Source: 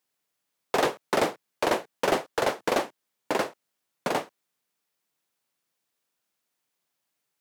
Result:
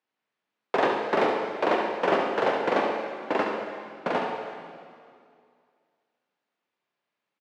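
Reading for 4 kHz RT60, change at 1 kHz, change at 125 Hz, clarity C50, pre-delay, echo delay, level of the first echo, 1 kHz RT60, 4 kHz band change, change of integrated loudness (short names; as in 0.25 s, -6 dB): 2.1 s, +3.0 dB, -1.0 dB, 1.5 dB, 8 ms, 70 ms, -7.0 dB, 2.3 s, -3.0 dB, +1.5 dB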